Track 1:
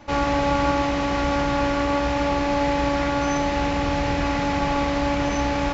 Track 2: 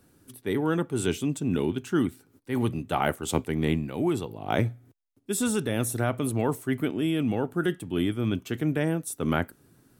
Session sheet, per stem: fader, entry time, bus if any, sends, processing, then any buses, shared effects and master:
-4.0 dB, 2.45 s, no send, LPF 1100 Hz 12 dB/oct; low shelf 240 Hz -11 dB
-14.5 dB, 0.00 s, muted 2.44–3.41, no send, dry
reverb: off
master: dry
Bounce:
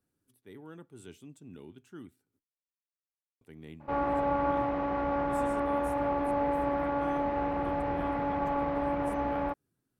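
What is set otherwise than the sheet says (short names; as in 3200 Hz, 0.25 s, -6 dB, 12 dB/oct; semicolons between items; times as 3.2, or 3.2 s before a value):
stem 1: entry 2.45 s -> 3.80 s; stem 2 -14.5 dB -> -22.0 dB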